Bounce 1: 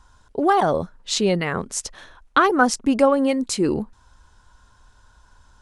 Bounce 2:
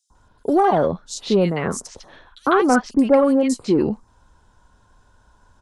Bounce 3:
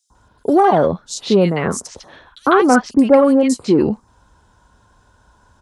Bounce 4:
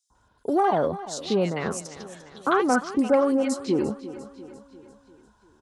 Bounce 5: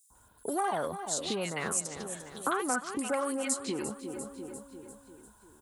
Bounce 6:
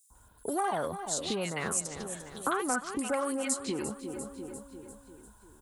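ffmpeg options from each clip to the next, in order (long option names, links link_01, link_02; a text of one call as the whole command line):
ffmpeg -i in.wav -filter_complex "[0:a]acrossover=split=1200|4700[link_01][link_02][link_03];[link_01]adelay=100[link_04];[link_02]adelay=150[link_05];[link_04][link_05][link_03]amix=inputs=3:normalize=0,acrossover=split=110|1100|3900[link_06][link_07][link_08][link_09];[link_07]acontrast=77[link_10];[link_06][link_10][link_08][link_09]amix=inputs=4:normalize=0,volume=-3dB" out.wav
ffmpeg -i in.wav -af "highpass=44,volume=4dB" out.wav
ffmpeg -i in.wav -af "lowshelf=frequency=390:gain=-3.5,aecho=1:1:347|694|1041|1388|1735:0.178|0.0942|0.05|0.0265|0.014,volume=-8dB" out.wav
ffmpeg -i in.wav -filter_complex "[0:a]acrossover=split=1000|6900[link_01][link_02][link_03];[link_01]acompressor=threshold=-35dB:ratio=4[link_04];[link_02]acompressor=threshold=-32dB:ratio=4[link_05];[link_03]acompressor=threshold=-59dB:ratio=4[link_06];[link_04][link_05][link_06]amix=inputs=3:normalize=0,aexciter=amount=11.8:drive=3.1:freq=7800" out.wav
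ffmpeg -i in.wav -af "lowshelf=frequency=68:gain=11.5" out.wav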